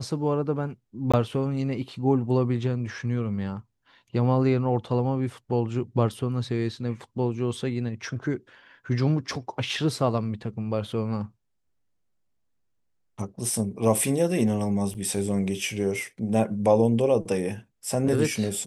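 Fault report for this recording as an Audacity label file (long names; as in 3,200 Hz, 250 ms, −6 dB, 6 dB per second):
1.120000	1.140000	drop-out 16 ms
14.940000	14.950000	drop-out 7.4 ms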